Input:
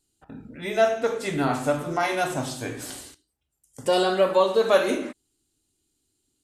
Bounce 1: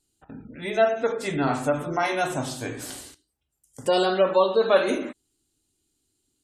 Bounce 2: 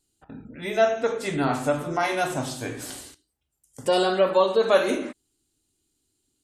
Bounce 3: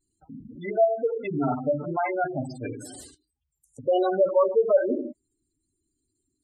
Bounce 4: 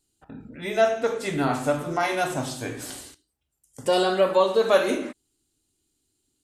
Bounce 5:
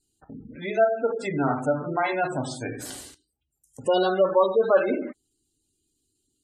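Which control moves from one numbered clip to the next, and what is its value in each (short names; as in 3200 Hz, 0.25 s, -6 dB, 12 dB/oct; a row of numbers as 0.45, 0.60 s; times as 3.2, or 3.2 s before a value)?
spectral gate, under each frame's peak: -35, -45, -10, -60, -20 dB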